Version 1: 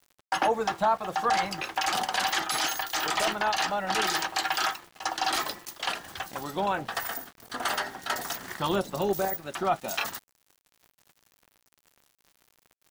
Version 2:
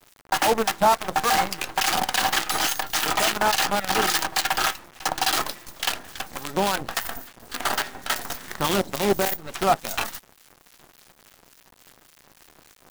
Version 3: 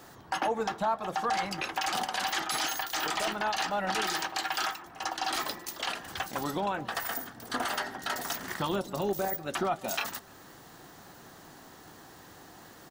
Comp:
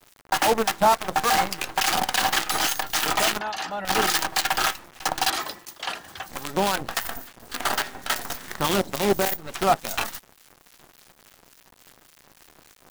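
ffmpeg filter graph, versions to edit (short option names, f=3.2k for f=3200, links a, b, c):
-filter_complex "[1:a]asplit=3[a][b][c];[a]atrim=end=3.392[d];[2:a]atrim=start=3.388:end=3.852[e];[b]atrim=start=3.848:end=5.302[f];[0:a]atrim=start=5.298:end=6.292[g];[c]atrim=start=6.288[h];[d][e]acrossfade=d=0.004:c1=hsin:c2=hsin[i];[i][f]acrossfade=d=0.004:c1=hsin:c2=hsin[j];[j][g]acrossfade=d=0.004:c1=hsin:c2=hsin[k];[k][h]acrossfade=d=0.004:c1=hsin:c2=hsin"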